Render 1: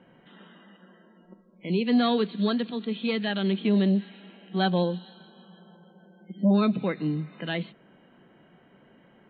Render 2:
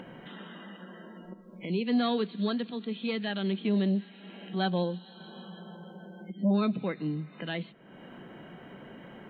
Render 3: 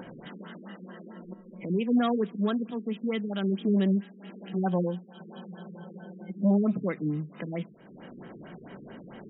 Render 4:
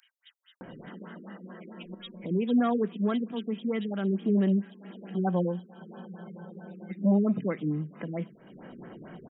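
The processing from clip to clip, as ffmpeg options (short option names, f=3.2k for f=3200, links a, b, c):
-af "acompressor=mode=upward:threshold=-29dB:ratio=2.5,volume=-4.5dB"
-af "afftfilt=real='re*lt(b*sr/1024,450*pow(3900/450,0.5+0.5*sin(2*PI*4.5*pts/sr)))':imag='im*lt(b*sr/1024,450*pow(3900/450,0.5+0.5*sin(2*PI*4.5*pts/sr)))':win_size=1024:overlap=0.75,volume=2.5dB"
-filter_complex "[0:a]acrossover=split=2700[a][b];[a]adelay=610[c];[c][b]amix=inputs=2:normalize=0"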